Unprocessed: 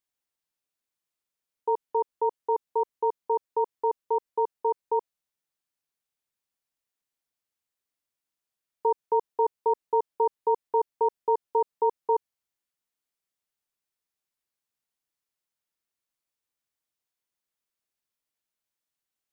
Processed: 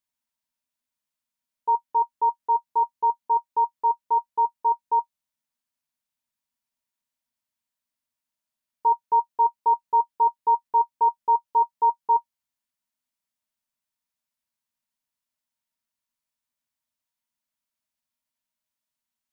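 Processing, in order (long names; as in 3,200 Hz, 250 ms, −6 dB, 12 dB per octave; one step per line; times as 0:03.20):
parametric band 430 Hz −13 dB 1.1 octaves
hollow resonant body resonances 240/620/940 Hz, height 12 dB, ringing for 75 ms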